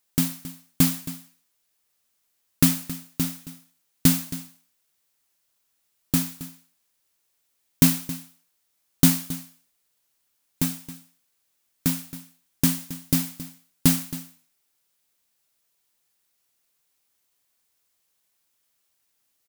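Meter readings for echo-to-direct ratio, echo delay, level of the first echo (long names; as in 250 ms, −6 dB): −15.5 dB, 271 ms, −15.5 dB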